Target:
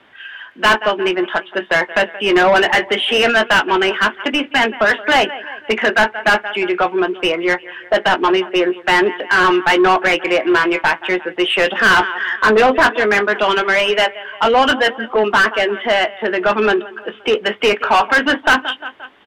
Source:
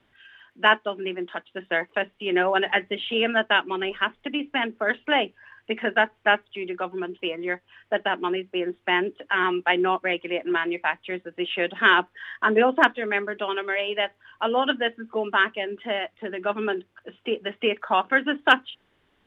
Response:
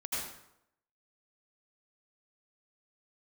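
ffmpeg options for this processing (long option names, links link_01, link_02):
-filter_complex "[0:a]asplit=2[link_01][link_02];[link_02]adelay=19,volume=-11.5dB[link_03];[link_01][link_03]amix=inputs=2:normalize=0,aecho=1:1:175|350|525:0.0668|0.0341|0.0174,asplit=2[link_04][link_05];[link_05]highpass=frequency=720:poles=1,volume=26dB,asoftclip=type=tanh:threshold=-2.5dB[link_06];[link_04][link_06]amix=inputs=2:normalize=0,lowpass=frequency=2200:poles=1,volume=-6dB"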